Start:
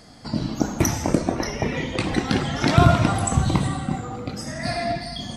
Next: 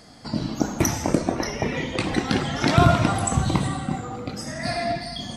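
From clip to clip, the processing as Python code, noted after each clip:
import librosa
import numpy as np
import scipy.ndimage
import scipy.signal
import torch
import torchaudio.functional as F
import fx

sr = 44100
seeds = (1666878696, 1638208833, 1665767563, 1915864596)

y = fx.low_shelf(x, sr, hz=130.0, db=-4.0)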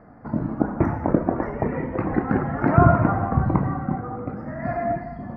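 y = scipy.signal.sosfilt(scipy.signal.cheby2(4, 40, 3200.0, 'lowpass', fs=sr, output='sos'), x)
y = y * librosa.db_to_amplitude(1.5)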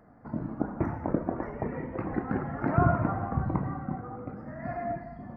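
y = fx.wow_flutter(x, sr, seeds[0], rate_hz=2.1, depth_cents=18.0)
y = y * librosa.db_to_amplitude(-8.5)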